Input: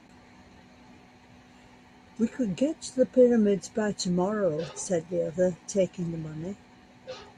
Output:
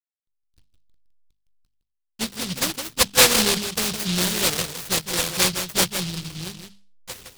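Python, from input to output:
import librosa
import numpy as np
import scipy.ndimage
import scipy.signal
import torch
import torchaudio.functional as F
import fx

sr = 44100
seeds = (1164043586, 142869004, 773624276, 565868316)

p1 = fx.peak_eq(x, sr, hz=260.0, db=-14.0, octaves=0.49)
p2 = fx.backlash(p1, sr, play_db=-38.5)
p3 = fx.hum_notches(p2, sr, base_hz=50, count=5)
p4 = p3 + fx.echo_single(p3, sr, ms=162, db=-8.0, dry=0)
p5 = fx.env_lowpass_down(p4, sr, base_hz=2500.0, full_db=-24.5)
p6 = scipy.signal.sosfilt(scipy.signal.butter(2, 7400.0, 'lowpass', fs=sr, output='sos'), p5)
p7 = fx.noise_mod_delay(p6, sr, seeds[0], noise_hz=3800.0, depth_ms=0.5)
y = p7 * librosa.db_to_amplitude(5.5)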